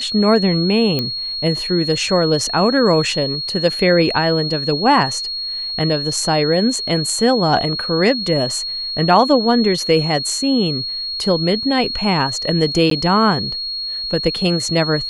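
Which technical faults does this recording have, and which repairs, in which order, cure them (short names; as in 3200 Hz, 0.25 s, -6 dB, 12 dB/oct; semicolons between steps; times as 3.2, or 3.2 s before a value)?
tone 4300 Hz -22 dBFS
0.99 pop -7 dBFS
12.9–12.91 gap 13 ms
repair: de-click; notch 4300 Hz, Q 30; interpolate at 12.9, 13 ms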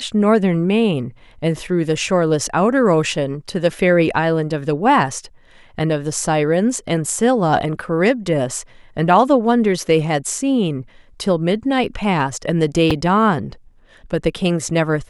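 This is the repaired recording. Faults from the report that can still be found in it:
none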